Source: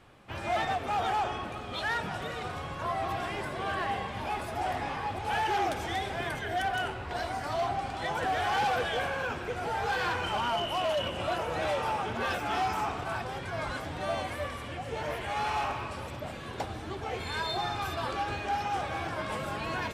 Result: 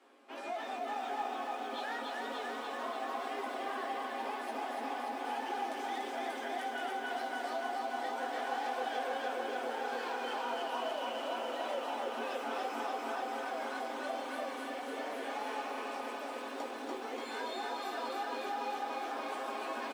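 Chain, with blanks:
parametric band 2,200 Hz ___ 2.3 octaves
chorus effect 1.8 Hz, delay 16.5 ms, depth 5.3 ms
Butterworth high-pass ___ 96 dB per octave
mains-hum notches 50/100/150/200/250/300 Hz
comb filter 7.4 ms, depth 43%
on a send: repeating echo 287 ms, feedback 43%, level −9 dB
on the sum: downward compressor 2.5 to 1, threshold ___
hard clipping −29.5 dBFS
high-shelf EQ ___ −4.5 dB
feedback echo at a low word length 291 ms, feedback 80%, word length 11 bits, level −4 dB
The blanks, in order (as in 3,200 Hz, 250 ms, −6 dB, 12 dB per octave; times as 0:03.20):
−4.5 dB, 230 Hz, −39 dBFS, 7,800 Hz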